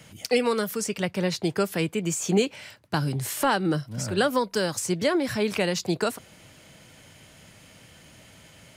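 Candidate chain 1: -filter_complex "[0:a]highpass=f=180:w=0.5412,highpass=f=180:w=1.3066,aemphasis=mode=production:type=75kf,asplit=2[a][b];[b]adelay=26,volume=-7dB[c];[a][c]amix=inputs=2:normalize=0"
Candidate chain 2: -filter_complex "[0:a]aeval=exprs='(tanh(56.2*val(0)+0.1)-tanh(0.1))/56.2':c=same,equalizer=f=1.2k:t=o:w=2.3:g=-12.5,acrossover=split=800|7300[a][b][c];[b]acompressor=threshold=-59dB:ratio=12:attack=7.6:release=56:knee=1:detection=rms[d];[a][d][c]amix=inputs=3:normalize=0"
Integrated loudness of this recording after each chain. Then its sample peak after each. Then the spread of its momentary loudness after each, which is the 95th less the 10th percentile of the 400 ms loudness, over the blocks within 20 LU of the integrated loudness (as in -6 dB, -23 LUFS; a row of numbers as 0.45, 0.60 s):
-21.5, -41.5 LUFS; -2.5, -30.0 dBFS; 8, 14 LU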